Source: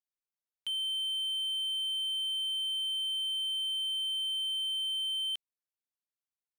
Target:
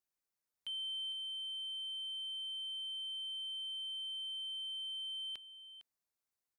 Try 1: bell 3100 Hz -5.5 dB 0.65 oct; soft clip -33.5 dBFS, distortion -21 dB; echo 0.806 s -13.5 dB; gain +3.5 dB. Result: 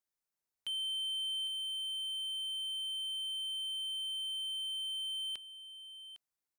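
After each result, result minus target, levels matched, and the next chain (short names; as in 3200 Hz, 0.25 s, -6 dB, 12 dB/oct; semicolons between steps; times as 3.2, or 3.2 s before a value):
echo 0.35 s late; soft clip: distortion -10 dB
bell 3100 Hz -5.5 dB 0.65 oct; soft clip -33.5 dBFS, distortion -21 dB; echo 0.456 s -13.5 dB; gain +3.5 dB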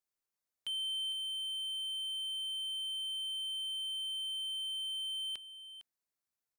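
soft clip: distortion -10 dB
bell 3100 Hz -5.5 dB 0.65 oct; soft clip -41.5 dBFS, distortion -11 dB; echo 0.456 s -13.5 dB; gain +3.5 dB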